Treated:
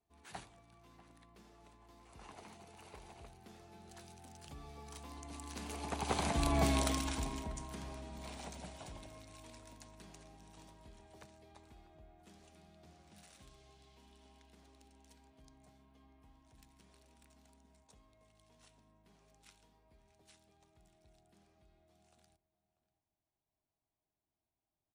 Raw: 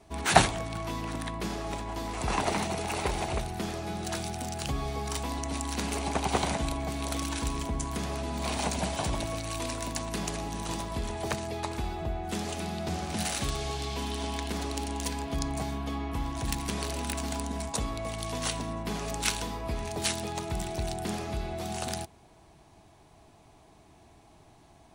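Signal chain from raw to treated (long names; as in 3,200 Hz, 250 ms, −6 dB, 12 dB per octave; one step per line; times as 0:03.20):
source passing by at 0:06.65, 13 m/s, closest 2 metres
slap from a distant wall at 110 metres, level −17 dB
level +3.5 dB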